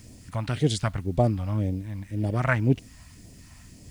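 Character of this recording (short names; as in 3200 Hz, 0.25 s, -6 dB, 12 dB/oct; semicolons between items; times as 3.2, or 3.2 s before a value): phasing stages 2, 1.9 Hz, lowest notch 380–1300 Hz; a quantiser's noise floor 10-bit, dither none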